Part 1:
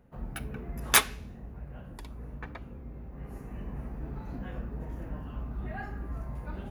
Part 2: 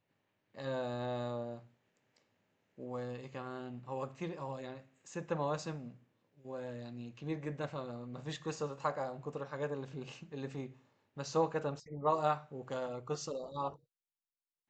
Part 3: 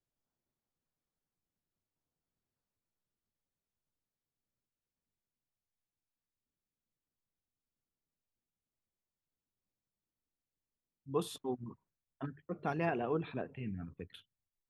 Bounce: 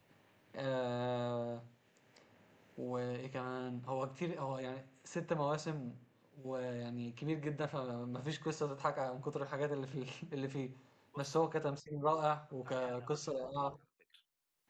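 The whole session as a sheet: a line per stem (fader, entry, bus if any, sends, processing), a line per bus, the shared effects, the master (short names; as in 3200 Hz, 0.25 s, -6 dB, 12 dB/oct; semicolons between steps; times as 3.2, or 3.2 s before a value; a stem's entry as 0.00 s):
off
+0.5 dB, 0.00 s, no send, dry
-14.5 dB, 0.00 s, no send, HPF 1000 Hz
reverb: off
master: three-band squash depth 40%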